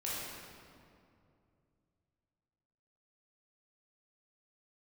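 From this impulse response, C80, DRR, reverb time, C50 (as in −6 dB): −1.0 dB, −8.0 dB, 2.5 s, −3.5 dB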